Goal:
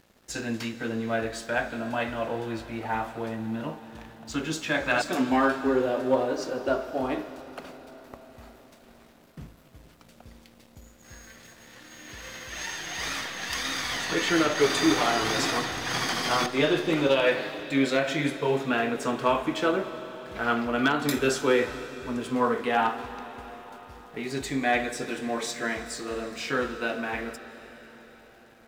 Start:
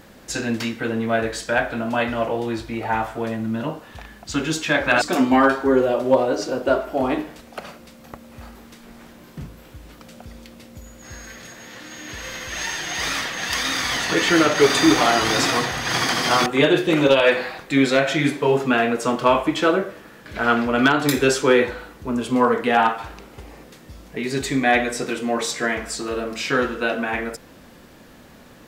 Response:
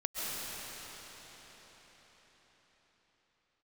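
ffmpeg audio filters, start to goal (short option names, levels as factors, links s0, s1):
-filter_complex "[0:a]aeval=exprs='sgn(val(0))*max(abs(val(0))-0.00447,0)':c=same,asplit=2[s0][s1];[s1]equalizer=f=3800:t=o:w=0.3:g=6[s2];[1:a]atrim=start_sample=2205,adelay=18[s3];[s2][s3]afir=irnorm=-1:irlink=0,volume=0.126[s4];[s0][s4]amix=inputs=2:normalize=0,volume=0.447"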